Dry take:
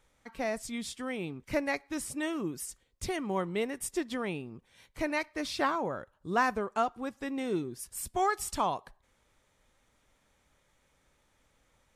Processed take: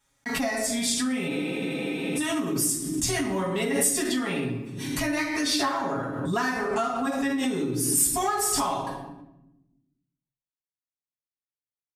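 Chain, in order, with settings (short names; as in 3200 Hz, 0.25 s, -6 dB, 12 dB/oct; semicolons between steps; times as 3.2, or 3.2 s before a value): gate -59 dBFS, range -51 dB; reverb RT60 0.90 s, pre-delay 4 ms, DRR -5 dB; in parallel at -6.5 dB: overloaded stage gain 18 dB; on the sum: HPF 46 Hz 12 dB/oct; notches 50/100/150 Hz; comb 7.3 ms, depth 65%; compressor 4:1, threshold -22 dBFS, peak gain reduction 10.5 dB; tone controls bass 0 dB, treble +9 dB; spectral freeze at 1.31, 0.86 s; backwards sustainer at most 36 dB/s; gain -3 dB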